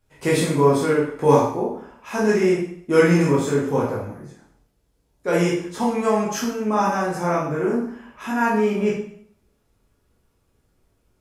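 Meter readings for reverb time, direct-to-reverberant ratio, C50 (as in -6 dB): 0.60 s, -6.0 dB, 3.0 dB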